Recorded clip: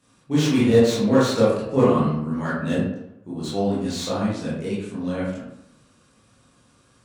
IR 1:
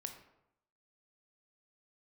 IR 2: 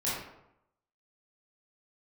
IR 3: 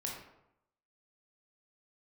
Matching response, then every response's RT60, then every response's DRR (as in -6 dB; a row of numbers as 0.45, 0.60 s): 2; 0.80, 0.80, 0.80 s; 5.5, -9.5, -2.0 dB